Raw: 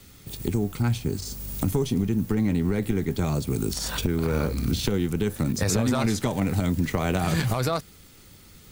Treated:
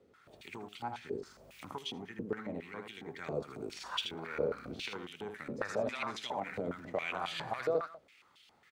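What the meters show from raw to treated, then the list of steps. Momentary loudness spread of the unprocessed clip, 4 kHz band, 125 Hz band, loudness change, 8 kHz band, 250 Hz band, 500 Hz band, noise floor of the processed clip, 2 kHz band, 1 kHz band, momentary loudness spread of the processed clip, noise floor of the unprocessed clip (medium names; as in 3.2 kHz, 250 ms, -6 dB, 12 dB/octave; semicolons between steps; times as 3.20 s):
5 LU, -7.5 dB, -25.5 dB, -13.5 dB, -21.5 dB, -19.5 dB, -8.0 dB, -66 dBFS, -6.5 dB, -6.5 dB, 11 LU, -50 dBFS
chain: multi-tap echo 79/193 ms -6/-19.5 dB; step-sequenced band-pass 7.3 Hz 480–3100 Hz; trim +1 dB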